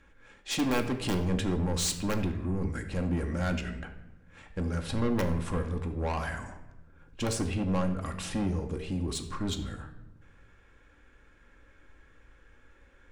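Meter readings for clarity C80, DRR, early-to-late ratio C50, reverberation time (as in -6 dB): 12.0 dB, 4.0 dB, 9.5 dB, 1.0 s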